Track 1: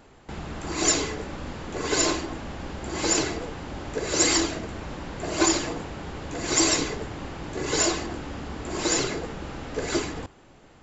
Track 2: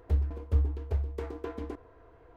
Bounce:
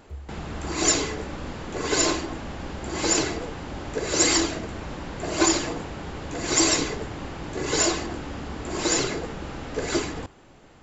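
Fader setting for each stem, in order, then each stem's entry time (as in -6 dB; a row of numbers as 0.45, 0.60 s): +1.0, -12.0 dB; 0.00, 0.00 s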